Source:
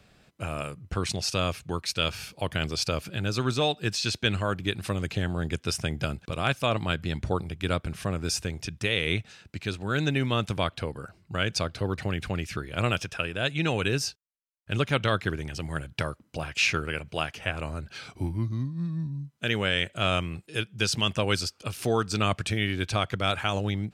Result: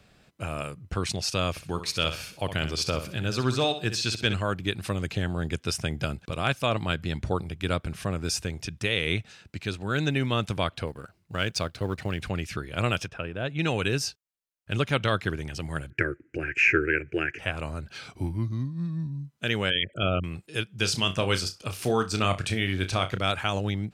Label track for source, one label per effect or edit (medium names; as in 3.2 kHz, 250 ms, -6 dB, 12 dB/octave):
1.500000	4.340000	flutter echo walls apart 10.8 m, dies away in 0.37 s
10.870000	12.200000	companding laws mixed up coded by A
13.080000	13.590000	low-pass 1.1 kHz 6 dB/octave
15.900000	17.390000	FFT filter 140 Hz 0 dB, 190 Hz -11 dB, 350 Hz +15 dB, 630 Hz -9 dB, 1.1 kHz -15 dB, 1.6 kHz +12 dB, 2.5 kHz +5 dB, 3.6 kHz -25 dB, 6.7 kHz -9 dB, 12 kHz -22 dB
19.700000	20.240000	resonances exaggerated exponent 3
20.760000	23.190000	flutter echo walls apart 5.4 m, dies away in 0.2 s